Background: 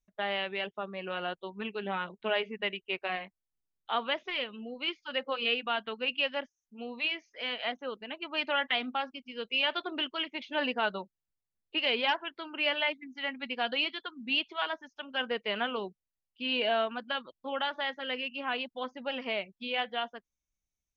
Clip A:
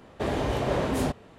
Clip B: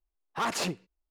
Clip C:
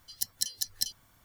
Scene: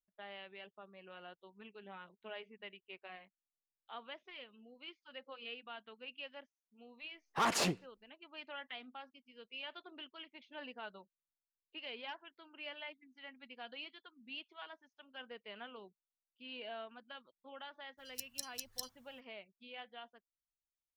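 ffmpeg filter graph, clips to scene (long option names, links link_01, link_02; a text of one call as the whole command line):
ffmpeg -i bed.wav -i cue0.wav -i cue1.wav -i cue2.wav -filter_complex "[0:a]volume=-17.5dB[link_01];[2:a]atrim=end=1.1,asetpts=PTS-STARTPTS,volume=-2dB,afade=type=in:duration=0.004:curve=hsin,afade=type=out:start_time=1.096:duration=0.004:curve=hsin,adelay=7000[link_02];[3:a]atrim=end=1.24,asetpts=PTS-STARTPTS,volume=-12dB,afade=type=in:duration=0.02,afade=type=out:start_time=1.22:duration=0.02,adelay=17970[link_03];[link_01][link_02][link_03]amix=inputs=3:normalize=0" out.wav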